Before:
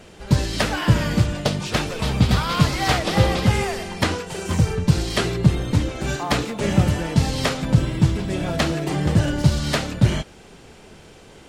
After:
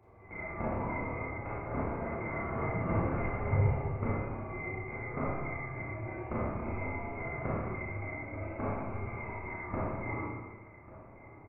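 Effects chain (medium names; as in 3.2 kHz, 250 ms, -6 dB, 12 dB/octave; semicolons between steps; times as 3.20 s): split-band scrambler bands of 2 kHz; Gaussian low-pass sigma 8.4 samples; peaking EQ 100 Hz +9 dB 0.9 oct; delay 1142 ms -17.5 dB; Schroeder reverb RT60 1.4 s, combs from 27 ms, DRR -7.5 dB; trim -7 dB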